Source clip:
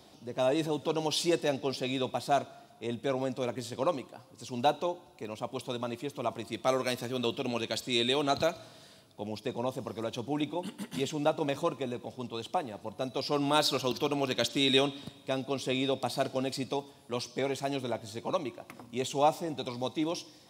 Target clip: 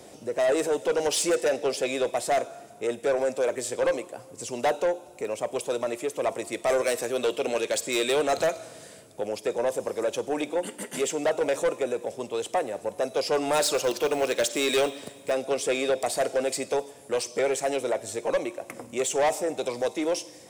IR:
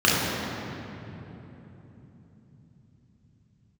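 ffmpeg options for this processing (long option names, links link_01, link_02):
-filter_complex "[0:a]equalizer=frequency=500:width_type=o:width=1:gain=10,equalizer=frequency=1000:width_type=o:width=1:gain=-3,equalizer=frequency=2000:width_type=o:width=1:gain=6,equalizer=frequency=4000:width_type=o:width=1:gain=-8,equalizer=frequency=8000:width_type=o:width=1:gain=12,acrossover=split=340[link_01][link_02];[link_01]acompressor=threshold=-49dB:ratio=4[link_03];[link_03][link_02]amix=inputs=2:normalize=0,asettb=1/sr,asplit=3[link_04][link_05][link_06];[link_04]atrim=end=13.744[link_07];[link_05]atrim=start=13.74:end=15.32,asetpts=PTS-STARTPTS,afade=type=in:duration=0.004:curve=qsin,afade=type=out:start_time=1.576:duration=0.004:curve=qsin,acrusher=bits=5:mode=log:mix=0:aa=0.000001[link_08];[link_06]atrim=start=15.316[link_09];[link_07][link_08]acrossfade=duration=0.004:curve1=hsin:curve2=qsin[link_10];[link_10][link_09]acrossfade=duration=0.004:curve1=qsin:curve2=hsin,asoftclip=type=tanh:threshold=-24dB,volume=5dB"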